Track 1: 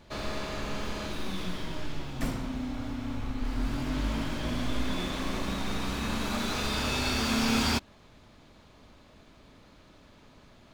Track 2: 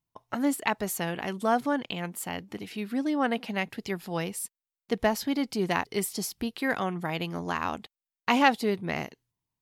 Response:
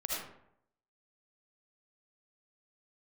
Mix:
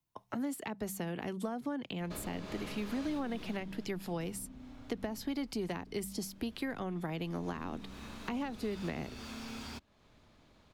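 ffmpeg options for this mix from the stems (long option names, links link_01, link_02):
-filter_complex "[0:a]acompressor=threshold=-41dB:ratio=2,adelay=2000,volume=9.5dB,afade=type=out:start_time=3.4:duration=0.45:silence=0.334965,afade=type=out:start_time=5.12:duration=0.31:silence=0.398107,afade=type=in:start_time=7.11:duration=0.57:silence=0.316228[link_01];[1:a]bandreject=frequency=64.8:width_type=h:width=4,bandreject=frequency=129.6:width_type=h:width=4,bandreject=frequency=194.4:width_type=h:width=4,acompressor=threshold=-27dB:ratio=6,volume=0.5dB[link_02];[link_01][link_02]amix=inputs=2:normalize=0,acrossover=split=95|210|450[link_03][link_04][link_05][link_06];[link_03]acompressor=threshold=-49dB:ratio=4[link_07];[link_04]acompressor=threshold=-44dB:ratio=4[link_08];[link_05]acompressor=threshold=-39dB:ratio=4[link_09];[link_06]acompressor=threshold=-43dB:ratio=4[link_10];[link_07][link_08][link_09][link_10]amix=inputs=4:normalize=0"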